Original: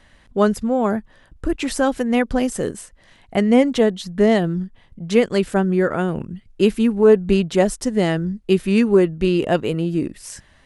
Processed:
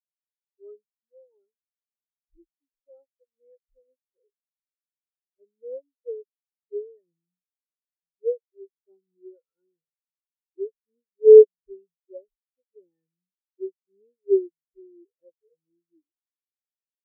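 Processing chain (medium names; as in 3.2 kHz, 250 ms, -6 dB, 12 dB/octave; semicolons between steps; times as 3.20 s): time stretch by phase-locked vocoder 1.6×; comb 2.2 ms, depth 66%; spectral contrast expander 4:1; trim -1 dB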